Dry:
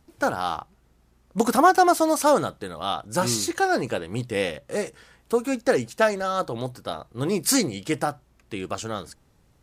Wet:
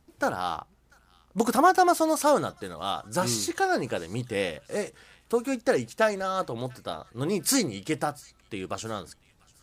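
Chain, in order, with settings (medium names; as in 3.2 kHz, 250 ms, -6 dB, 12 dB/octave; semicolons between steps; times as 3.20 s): feedback echo behind a high-pass 692 ms, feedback 45%, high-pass 1.8 kHz, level -23 dB; trim -3 dB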